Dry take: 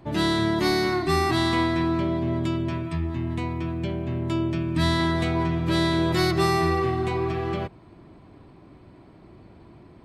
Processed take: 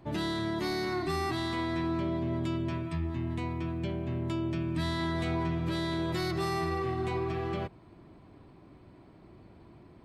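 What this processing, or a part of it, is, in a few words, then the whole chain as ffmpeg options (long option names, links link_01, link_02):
soft clipper into limiter: -af "asoftclip=type=tanh:threshold=-12dB,alimiter=limit=-18.5dB:level=0:latency=1:release=108,volume=-5dB"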